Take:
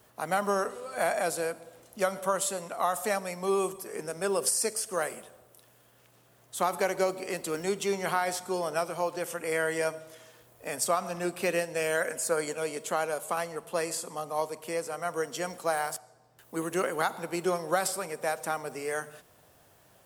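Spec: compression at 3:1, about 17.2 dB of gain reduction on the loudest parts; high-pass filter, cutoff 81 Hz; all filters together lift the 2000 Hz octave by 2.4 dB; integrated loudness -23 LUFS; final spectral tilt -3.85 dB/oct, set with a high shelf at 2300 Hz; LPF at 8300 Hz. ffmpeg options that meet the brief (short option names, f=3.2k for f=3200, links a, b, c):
-af "highpass=81,lowpass=8.3k,equalizer=f=2k:t=o:g=7,highshelf=f=2.3k:g=-8,acompressor=threshold=-47dB:ratio=3,volume=23dB"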